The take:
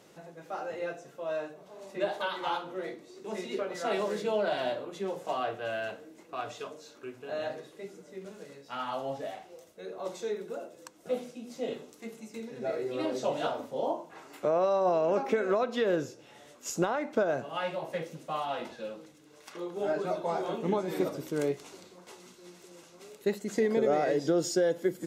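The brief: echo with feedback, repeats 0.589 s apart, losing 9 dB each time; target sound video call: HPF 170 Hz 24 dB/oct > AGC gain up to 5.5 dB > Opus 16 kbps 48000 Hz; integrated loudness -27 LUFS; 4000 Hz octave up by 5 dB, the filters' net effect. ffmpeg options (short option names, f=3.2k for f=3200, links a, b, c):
-af "highpass=f=170:w=0.5412,highpass=f=170:w=1.3066,equalizer=f=4k:t=o:g=6.5,aecho=1:1:589|1178|1767|2356:0.355|0.124|0.0435|0.0152,dynaudnorm=m=5.5dB,volume=2dB" -ar 48000 -c:a libopus -b:a 16k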